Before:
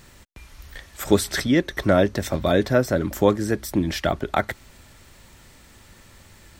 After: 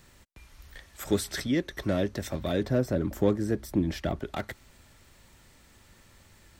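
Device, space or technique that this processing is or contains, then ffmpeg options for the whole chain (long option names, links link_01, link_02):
one-band saturation: -filter_complex "[0:a]acrossover=split=510|2400[link_01][link_02][link_03];[link_02]asoftclip=type=tanh:threshold=-26.5dB[link_04];[link_01][link_04][link_03]amix=inputs=3:normalize=0,asettb=1/sr,asplit=3[link_05][link_06][link_07];[link_05]atrim=end=2.614[link_08];[link_06]atrim=start=2.61:end=4.2,asetpts=PTS-STARTPTS,afade=type=in:duration=0.004:curve=qsin,afade=type=out:start_time=1.586:duration=0.004:curve=qsin,tiltshelf=frequency=1100:gain=4[link_09];[link_07]atrim=start=4.196[link_10];[link_08][link_09]acrossfade=duration=0.004:curve1=hsin:curve2=qsin[link_11];[link_11][link_10]acrossfade=duration=0.004:curve1=qsin:curve2=hsin,volume=-7.5dB"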